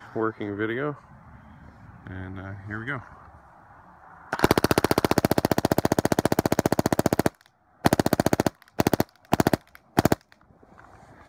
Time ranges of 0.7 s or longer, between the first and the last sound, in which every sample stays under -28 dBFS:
0.92–2.07
2.97–4.33

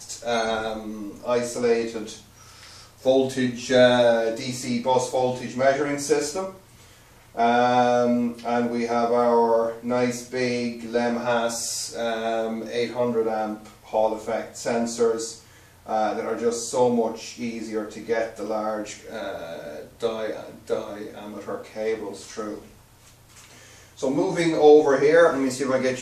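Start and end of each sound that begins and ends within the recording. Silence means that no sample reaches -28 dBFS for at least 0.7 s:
3.05–6.49
7.37–22.55

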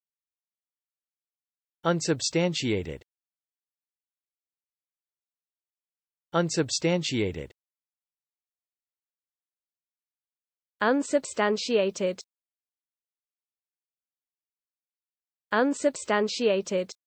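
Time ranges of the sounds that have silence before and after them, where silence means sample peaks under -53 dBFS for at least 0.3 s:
1.84–3.02
6.33–7.51
10.81–12.22

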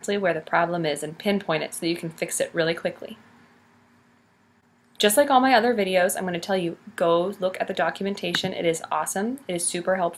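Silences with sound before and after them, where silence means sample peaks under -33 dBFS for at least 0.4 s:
3.13–5

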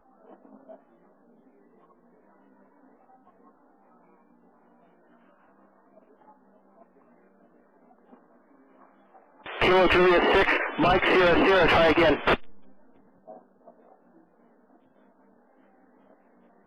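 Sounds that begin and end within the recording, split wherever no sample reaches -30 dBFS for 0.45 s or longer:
9.46–12.36

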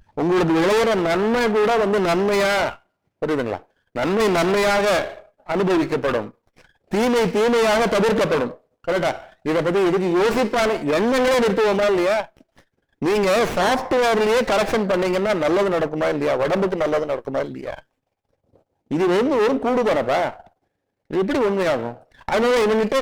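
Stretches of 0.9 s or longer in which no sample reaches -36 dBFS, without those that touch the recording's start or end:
17.79–18.91

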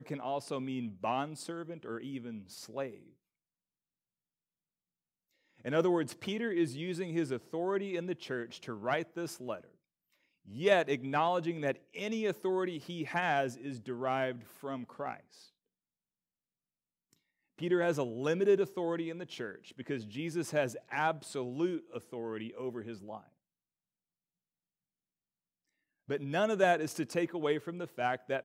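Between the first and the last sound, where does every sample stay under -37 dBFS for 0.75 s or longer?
2.87–5.66
9.56–10.57
15.14–17.61
23.17–26.1

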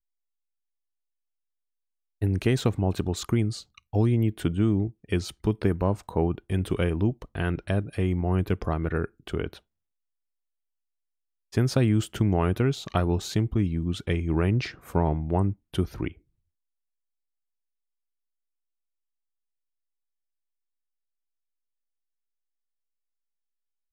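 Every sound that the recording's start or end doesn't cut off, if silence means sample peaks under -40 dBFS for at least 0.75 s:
2.22–9.58
11.53–16.12

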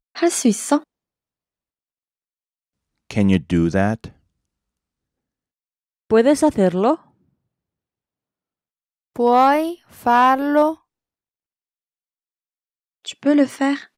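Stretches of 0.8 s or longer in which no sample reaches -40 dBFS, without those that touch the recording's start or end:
0.83–3.11
4.1–6.11
7–9.16
10.75–13.05

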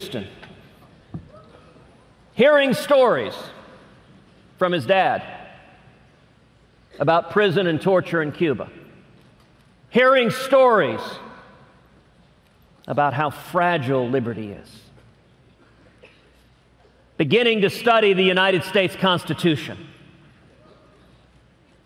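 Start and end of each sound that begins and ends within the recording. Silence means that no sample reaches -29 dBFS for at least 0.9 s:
2.38–3.46
4.61–5.41
6.99–8.64
9.94–11.19
12.88–14.59
17.19–19.75

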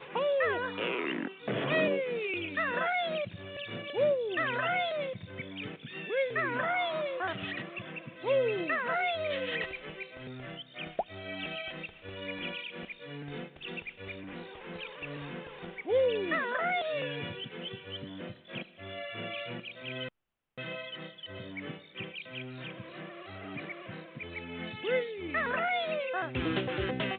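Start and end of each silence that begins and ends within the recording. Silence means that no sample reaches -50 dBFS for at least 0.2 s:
20.09–20.58

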